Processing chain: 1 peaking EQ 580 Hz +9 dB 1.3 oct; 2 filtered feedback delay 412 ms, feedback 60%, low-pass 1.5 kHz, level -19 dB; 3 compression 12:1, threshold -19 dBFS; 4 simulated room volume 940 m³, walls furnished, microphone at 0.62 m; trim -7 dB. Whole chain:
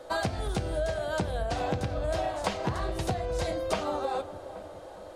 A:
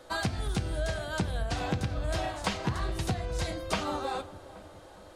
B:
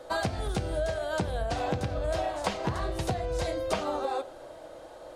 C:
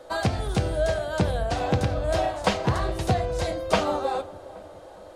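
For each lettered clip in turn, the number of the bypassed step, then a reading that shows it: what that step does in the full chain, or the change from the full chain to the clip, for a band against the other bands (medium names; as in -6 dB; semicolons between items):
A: 1, 500 Hz band -7.0 dB; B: 2, momentary loudness spread change +3 LU; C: 3, mean gain reduction 3.5 dB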